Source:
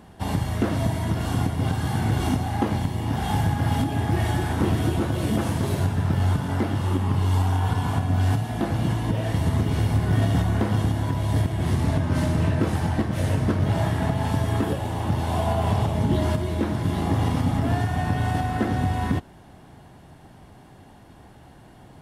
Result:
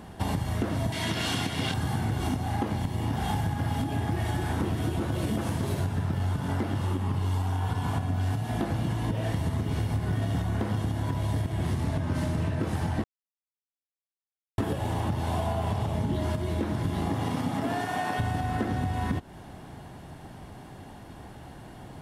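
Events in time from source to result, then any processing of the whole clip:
0.92–1.74 weighting filter D
13.04–14.58 mute
17.09–18.18 HPF 110 Hz -> 420 Hz
whole clip: compressor, threshold -29 dBFS; gain +3.5 dB

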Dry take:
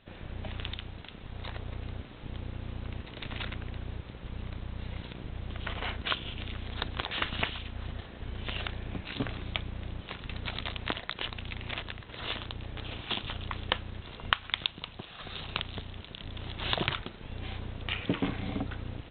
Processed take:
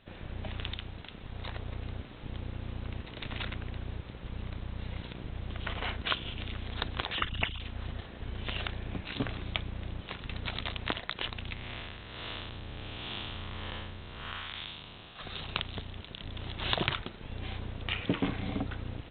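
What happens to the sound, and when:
7.15–7.6 formant sharpening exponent 2
11.53–15.16 time blur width 0.213 s

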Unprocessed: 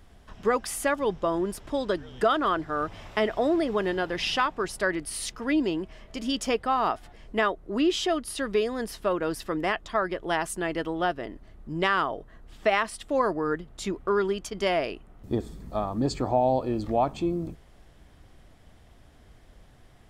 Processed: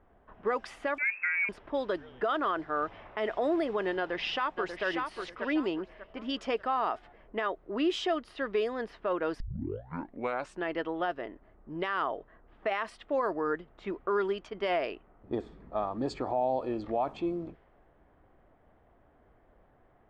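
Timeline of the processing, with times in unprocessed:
0.98–1.49 inverted band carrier 2600 Hz
3.98–4.85 echo throw 0.59 s, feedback 30%, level -7.5 dB
9.4 tape start 1.21 s
whole clip: low-pass opened by the level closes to 1200 Hz, open at -20 dBFS; tone controls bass -11 dB, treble -11 dB; limiter -19 dBFS; gain -1.5 dB

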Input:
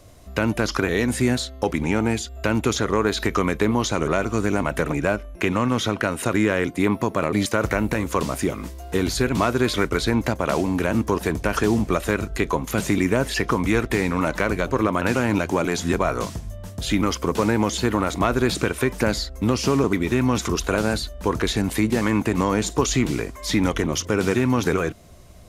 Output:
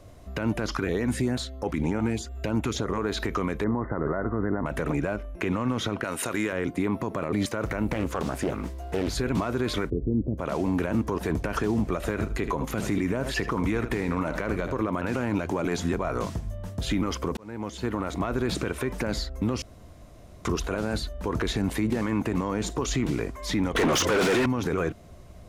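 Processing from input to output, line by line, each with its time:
0.75–2.98 LFO notch saw up 3.2 Hz 350–5400 Hz
3.64–4.66 brick-wall FIR low-pass 2100 Hz
6.04–6.53 tilt +2.5 dB/oct
7.91–9.13 Doppler distortion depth 0.48 ms
9.9–10.38 inverse Chebyshev low-pass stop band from 1400 Hz, stop band 60 dB
11.96–14.76 echo 78 ms -14 dB
17.37–18.44 fade in
19.62–20.45 room tone
23.75–24.46 overdrive pedal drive 31 dB, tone 7700 Hz, clips at -6 dBFS
whole clip: high shelf 2800 Hz -8.5 dB; limiter -17 dBFS

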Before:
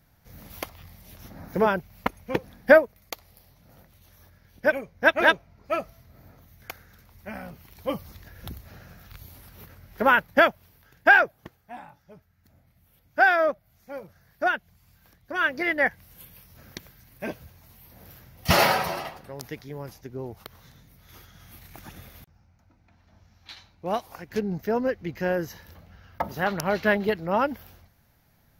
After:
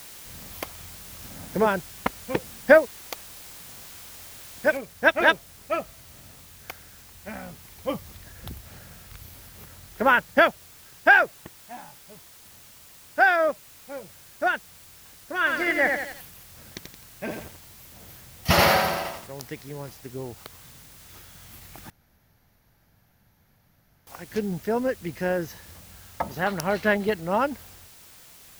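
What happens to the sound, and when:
4.77 noise floor step -44 dB -50 dB
15.38–19.27 lo-fi delay 86 ms, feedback 55%, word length 7-bit, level -4 dB
21.9–24.07 room tone

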